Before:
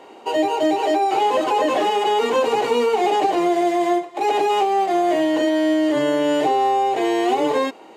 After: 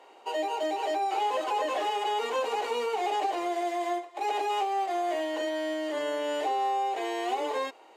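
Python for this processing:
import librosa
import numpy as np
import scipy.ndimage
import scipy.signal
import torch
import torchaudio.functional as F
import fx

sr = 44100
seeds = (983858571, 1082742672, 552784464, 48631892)

y = scipy.signal.sosfilt(scipy.signal.butter(2, 500.0, 'highpass', fs=sr, output='sos'), x)
y = F.gain(torch.from_numpy(y), -8.5).numpy()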